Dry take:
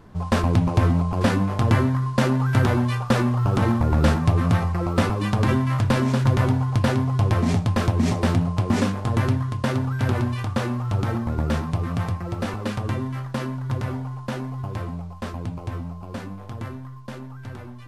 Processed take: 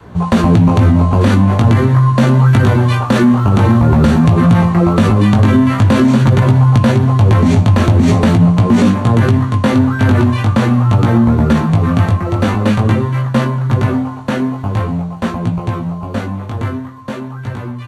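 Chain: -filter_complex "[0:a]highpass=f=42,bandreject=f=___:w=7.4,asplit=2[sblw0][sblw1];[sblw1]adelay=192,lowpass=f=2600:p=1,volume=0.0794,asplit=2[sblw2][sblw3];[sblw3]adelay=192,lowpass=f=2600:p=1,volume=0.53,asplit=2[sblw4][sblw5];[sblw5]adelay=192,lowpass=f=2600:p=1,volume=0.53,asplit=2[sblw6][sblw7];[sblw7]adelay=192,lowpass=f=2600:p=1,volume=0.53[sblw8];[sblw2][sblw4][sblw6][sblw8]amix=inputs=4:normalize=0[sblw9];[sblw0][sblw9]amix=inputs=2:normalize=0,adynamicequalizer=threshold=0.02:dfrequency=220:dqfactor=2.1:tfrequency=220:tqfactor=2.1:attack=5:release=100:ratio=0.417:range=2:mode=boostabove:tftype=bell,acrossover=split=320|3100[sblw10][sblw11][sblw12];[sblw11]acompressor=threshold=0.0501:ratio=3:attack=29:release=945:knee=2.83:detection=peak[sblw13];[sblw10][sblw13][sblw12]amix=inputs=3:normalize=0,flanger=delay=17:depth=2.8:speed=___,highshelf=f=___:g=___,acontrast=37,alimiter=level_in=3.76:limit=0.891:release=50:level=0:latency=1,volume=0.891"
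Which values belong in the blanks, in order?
5100, 0.45, 6000, -6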